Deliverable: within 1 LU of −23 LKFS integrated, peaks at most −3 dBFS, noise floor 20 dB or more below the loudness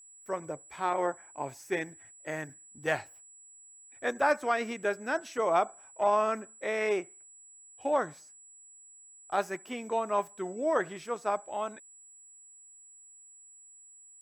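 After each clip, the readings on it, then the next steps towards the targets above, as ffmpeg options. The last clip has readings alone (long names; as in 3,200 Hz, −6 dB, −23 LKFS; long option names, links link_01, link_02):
interfering tone 7,800 Hz; level of the tone −52 dBFS; integrated loudness −32.0 LKFS; sample peak −13.0 dBFS; target loudness −23.0 LKFS
→ -af "bandreject=frequency=7800:width=30"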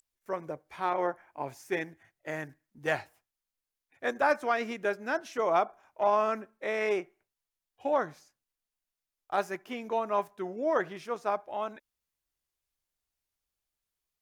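interfering tone none found; integrated loudness −32.0 LKFS; sample peak −13.0 dBFS; target loudness −23.0 LKFS
→ -af "volume=9dB"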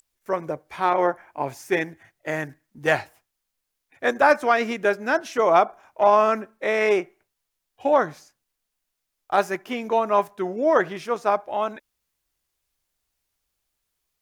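integrated loudness −23.0 LKFS; sample peak −4.0 dBFS; background noise floor −80 dBFS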